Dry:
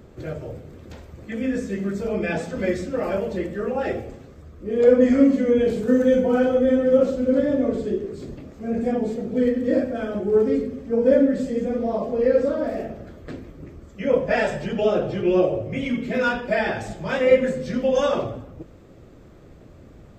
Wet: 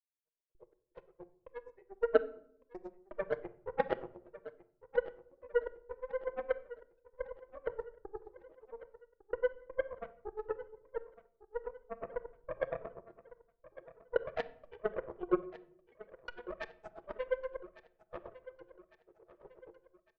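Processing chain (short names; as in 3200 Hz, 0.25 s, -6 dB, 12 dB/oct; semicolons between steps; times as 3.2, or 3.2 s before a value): spectral contrast raised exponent 1.7; recorder AGC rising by 11 dB/s; chorus voices 4, 0.4 Hz, delay 28 ms, depth 3.1 ms; compressor 10:1, threshold -24 dBFS, peak gain reduction 13 dB; flange 0.18 Hz, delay 4.4 ms, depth 2.8 ms, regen +59%; grains 75 ms, grains 8.5/s, spray 38 ms, pitch spread up and down by 0 st; rippled Chebyshev high-pass 350 Hz, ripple 3 dB; low-pass opened by the level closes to 1900 Hz, open at -34.5 dBFS; added harmonics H 3 -11 dB, 8 -32 dB, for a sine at -23.5 dBFS; step gate "...x.xx.xxxx" 82 bpm -60 dB; feedback echo 1.154 s, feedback 45%, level -16.5 dB; reverb RT60 0.70 s, pre-delay 6 ms, DRR 12 dB; gain +12 dB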